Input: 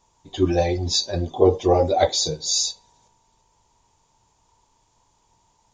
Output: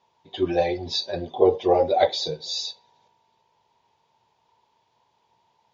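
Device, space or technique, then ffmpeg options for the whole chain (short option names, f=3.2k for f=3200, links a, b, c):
kitchen radio: -af "highpass=180,equalizer=f=190:t=q:w=4:g=-4,equalizer=f=290:t=q:w=4:g=-9,equalizer=f=1.2k:t=q:w=4:g=-5,lowpass=f=4.2k:w=0.5412,lowpass=f=4.2k:w=1.3066"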